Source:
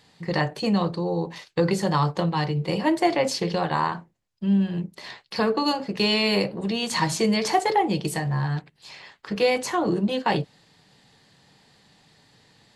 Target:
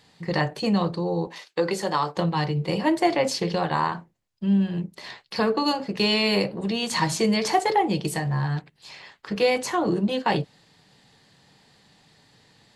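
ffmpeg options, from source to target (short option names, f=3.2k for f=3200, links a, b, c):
-filter_complex "[0:a]asettb=1/sr,asplit=3[a][b][c];[a]atrim=end=1.274[d];[b]atrim=start=1.27:end=2.17,asetpts=PTS-STARTPTS,afade=t=in:d=0.004:c=qsin,afade=t=out:st=0.896:d=0.004:c=qsin,highpass=310[e];[c]atrim=start=2.166[f];[d][e]acrossfade=d=0.004:c1=hsin:c2=qsin[g];[g][f]acrossfade=d=0.004:c1=qsin:c2=hsin"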